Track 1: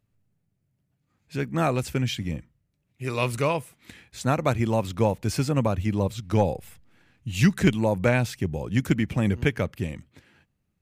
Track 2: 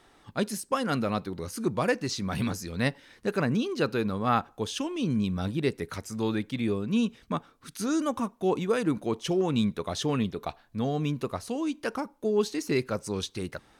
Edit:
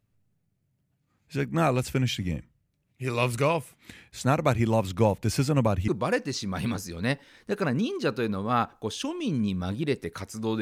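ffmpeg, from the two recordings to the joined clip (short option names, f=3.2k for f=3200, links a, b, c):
-filter_complex "[0:a]apad=whole_dur=10.61,atrim=end=10.61,atrim=end=5.882[a];[1:a]atrim=start=1.638:end=6.37[b];[a][b]acrossfade=d=0.004:c1=hsin:c2=hsin"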